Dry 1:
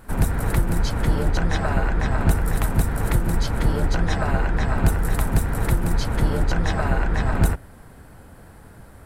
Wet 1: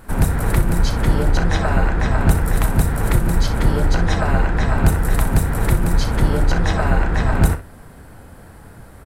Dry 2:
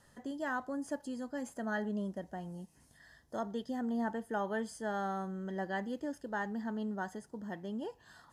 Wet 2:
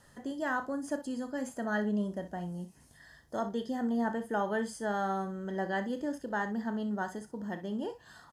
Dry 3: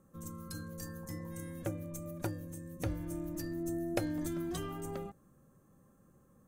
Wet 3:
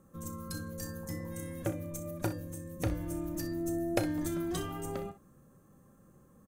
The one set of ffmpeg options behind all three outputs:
-af "aecho=1:1:34|62:0.237|0.224,volume=1.5"

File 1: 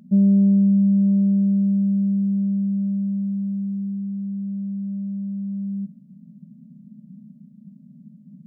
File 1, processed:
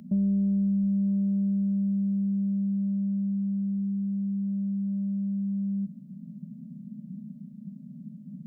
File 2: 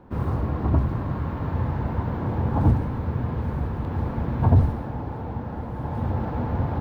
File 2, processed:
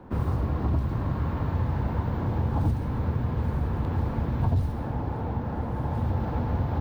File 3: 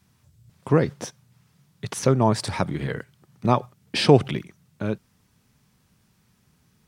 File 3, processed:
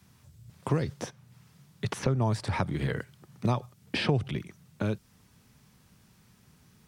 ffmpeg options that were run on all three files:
-filter_complex "[0:a]acrossover=split=100|3200[s0][s1][s2];[s0]acompressor=threshold=0.0355:ratio=4[s3];[s1]acompressor=threshold=0.0251:ratio=4[s4];[s2]acompressor=threshold=0.00316:ratio=4[s5];[s3][s4][s5]amix=inputs=3:normalize=0,volume=1.41"

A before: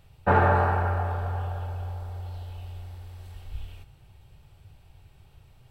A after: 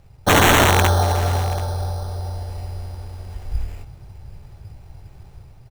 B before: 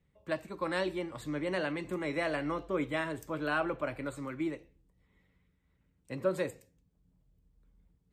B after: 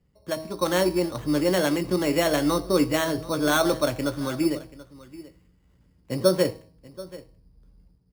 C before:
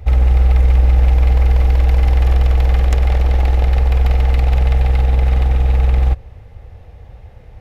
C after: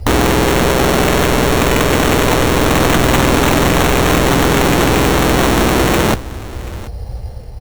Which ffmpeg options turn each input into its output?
-filter_complex "[0:a]lowpass=f=1200:p=1,bandreject=f=158.9:t=h:w=4,bandreject=f=317.8:t=h:w=4,bandreject=f=476.7:t=h:w=4,bandreject=f=635.6:t=h:w=4,bandreject=f=794.5:t=h:w=4,bandreject=f=953.4:t=h:w=4,bandreject=f=1112.3:t=h:w=4,dynaudnorm=f=210:g=5:m=1.88,asplit=2[s0][s1];[s1]asoftclip=type=hard:threshold=0.266,volume=0.355[s2];[s0][s2]amix=inputs=2:normalize=0,acrusher=samples=9:mix=1:aa=0.000001,aeval=exprs='(mod(3.55*val(0)+1,2)-1)/3.55':c=same,asplit=2[s3][s4];[s4]adelay=17,volume=0.2[s5];[s3][s5]amix=inputs=2:normalize=0,aecho=1:1:733:0.119,volume=1.58"

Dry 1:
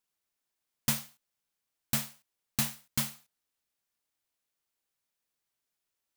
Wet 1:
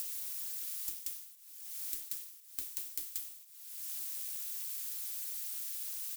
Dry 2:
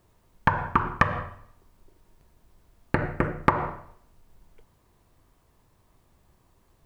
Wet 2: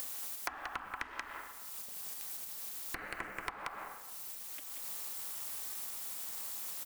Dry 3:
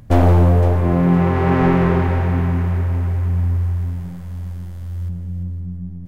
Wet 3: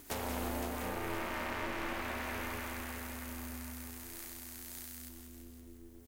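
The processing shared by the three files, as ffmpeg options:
-filter_complex "[0:a]asplit=2[s0][s1];[s1]aecho=0:1:182:0.422[s2];[s0][s2]amix=inputs=2:normalize=0,acompressor=mode=upward:threshold=0.112:ratio=2.5,aderivative,acrossover=split=180[s3][s4];[s4]acompressor=threshold=0.00708:ratio=10[s5];[s3][s5]amix=inputs=2:normalize=0,aeval=exprs='val(0)*sin(2*PI*160*n/s)':c=same,volume=3.16"

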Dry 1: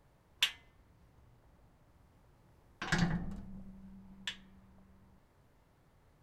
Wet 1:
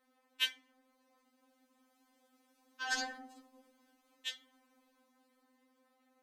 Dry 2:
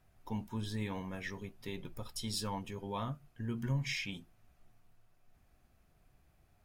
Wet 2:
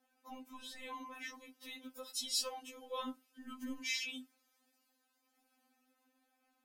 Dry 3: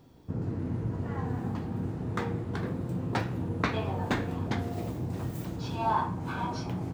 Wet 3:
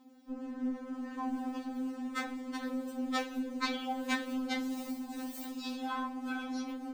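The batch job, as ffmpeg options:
-filter_complex "[0:a]highpass=f=81:w=0.5412,highpass=f=81:w=1.3066,acrossover=split=810|2800[s0][s1][s2];[s0]asoftclip=type=tanh:threshold=0.0376[s3];[s2]dynaudnorm=f=130:g=21:m=2.11[s4];[s3][s1][s4]amix=inputs=3:normalize=0,afftfilt=real='re*3.46*eq(mod(b,12),0)':imag='im*3.46*eq(mod(b,12),0)':win_size=2048:overlap=0.75"

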